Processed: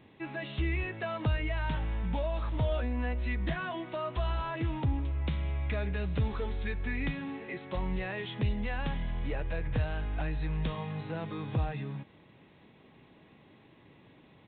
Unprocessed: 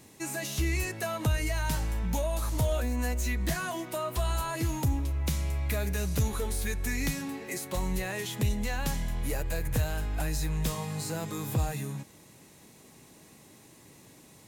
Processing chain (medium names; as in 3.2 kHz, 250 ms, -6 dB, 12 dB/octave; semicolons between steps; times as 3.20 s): resampled via 8 kHz; trim -2 dB